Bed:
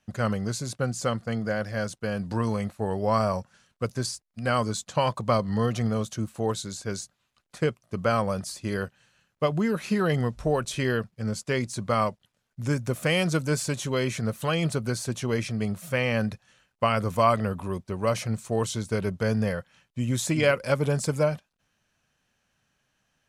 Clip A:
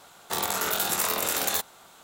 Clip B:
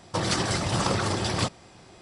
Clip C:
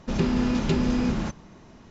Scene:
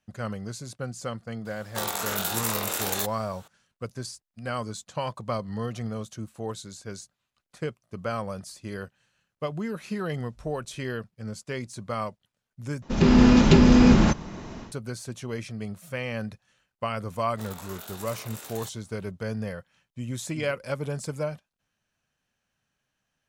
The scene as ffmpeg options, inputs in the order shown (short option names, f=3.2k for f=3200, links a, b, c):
-filter_complex "[1:a]asplit=2[a][b];[0:a]volume=-6.5dB[c];[3:a]dynaudnorm=f=150:g=3:m=11.5dB[d];[c]asplit=2[e][f];[e]atrim=end=12.824[g];[d]atrim=end=1.9,asetpts=PTS-STARTPTS,volume=-1dB[h];[f]atrim=start=14.716[i];[a]atrim=end=2.03,asetpts=PTS-STARTPTS,volume=-2.5dB,afade=t=in:d=0.004:c=hsin,afade=t=out:st=2.026:d=0.004:c=hsin,adelay=1450[j];[b]atrim=end=2.03,asetpts=PTS-STARTPTS,volume=-16dB,afade=t=in:d=0.004:c=hsin,afade=t=out:st=2.026:d=0.004:c=hsin,adelay=17080[k];[g][h]acrossfade=d=0.004:c1=hsin:c2=hsin[l];[l][i]acrossfade=d=0.004:c1=hsin:c2=hsin[m];[m][j][k]amix=inputs=3:normalize=0"